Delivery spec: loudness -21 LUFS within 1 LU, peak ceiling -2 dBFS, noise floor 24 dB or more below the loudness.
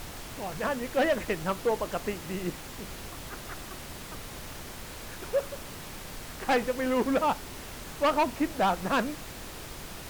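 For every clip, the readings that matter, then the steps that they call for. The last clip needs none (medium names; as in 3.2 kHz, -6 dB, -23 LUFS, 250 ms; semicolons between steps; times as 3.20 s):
clipped samples 1.5%; clipping level -20.0 dBFS; noise floor -42 dBFS; noise floor target -56 dBFS; loudness -31.5 LUFS; peak level -20.0 dBFS; loudness target -21.0 LUFS
-> clip repair -20 dBFS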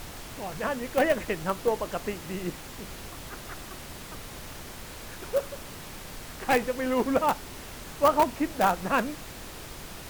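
clipped samples 0.0%; noise floor -42 dBFS; noise floor target -52 dBFS
-> noise print and reduce 10 dB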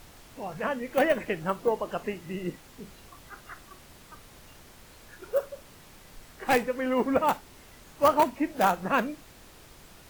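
noise floor -52 dBFS; loudness -28.0 LUFS; peak level -11.0 dBFS; loudness target -21.0 LUFS
-> trim +7 dB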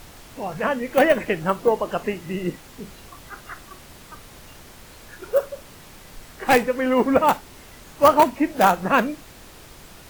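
loudness -21.0 LUFS; peak level -4.0 dBFS; noise floor -45 dBFS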